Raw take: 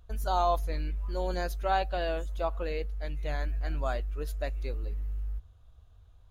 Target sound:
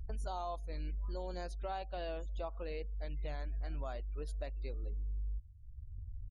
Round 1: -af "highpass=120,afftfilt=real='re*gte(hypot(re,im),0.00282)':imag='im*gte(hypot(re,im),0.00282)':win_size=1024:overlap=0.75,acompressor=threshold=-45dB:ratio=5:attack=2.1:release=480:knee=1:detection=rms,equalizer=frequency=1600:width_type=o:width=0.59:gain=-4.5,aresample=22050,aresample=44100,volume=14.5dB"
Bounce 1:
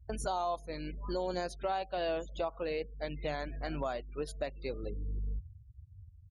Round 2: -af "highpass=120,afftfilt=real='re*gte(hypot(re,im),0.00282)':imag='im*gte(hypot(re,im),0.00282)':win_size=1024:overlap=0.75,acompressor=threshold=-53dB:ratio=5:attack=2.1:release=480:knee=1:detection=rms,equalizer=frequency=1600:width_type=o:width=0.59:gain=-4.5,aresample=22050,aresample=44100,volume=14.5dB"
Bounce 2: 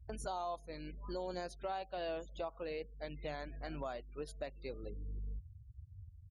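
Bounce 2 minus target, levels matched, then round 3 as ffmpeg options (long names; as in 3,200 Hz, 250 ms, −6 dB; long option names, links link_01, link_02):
125 Hz band −5.5 dB
-af "afftfilt=real='re*gte(hypot(re,im),0.00282)':imag='im*gte(hypot(re,im),0.00282)':win_size=1024:overlap=0.75,acompressor=threshold=-53dB:ratio=5:attack=2.1:release=480:knee=1:detection=rms,equalizer=frequency=1600:width_type=o:width=0.59:gain=-4.5,aresample=22050,aresample=44100,volume=14.5dB"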